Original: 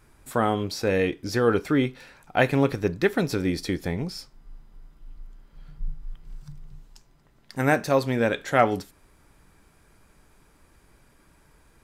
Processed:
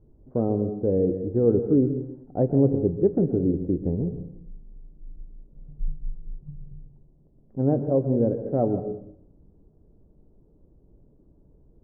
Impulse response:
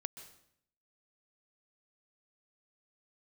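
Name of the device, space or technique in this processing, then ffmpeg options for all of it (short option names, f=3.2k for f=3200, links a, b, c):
next room: -filter_complex "[0:a]lowpass=f=520:w=0.5412,lowpass=f=520:w=1.3066,equalizer=f=1.7k:w=1.5:g=2[a];[1:a]atrim=start_sample=2205[b];[a][b]afir=irnorm=-1:irlink=0,volume=5dB"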